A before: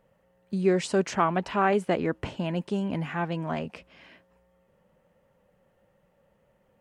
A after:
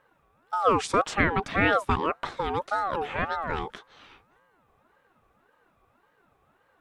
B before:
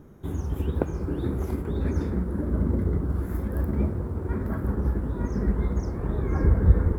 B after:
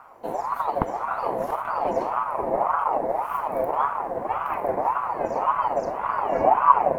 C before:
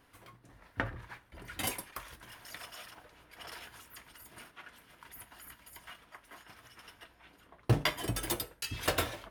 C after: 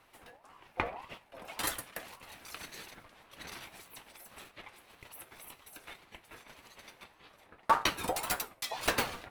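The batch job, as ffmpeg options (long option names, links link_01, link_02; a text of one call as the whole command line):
ffmpeg -i in.wav -af "aeval=exprs='val(0)*sin(2*PI*830*n/s+830*0.3/1.8*sin(2*PI*1.8*n/s))':channel_layout=same,volume=3.5dB" out.wav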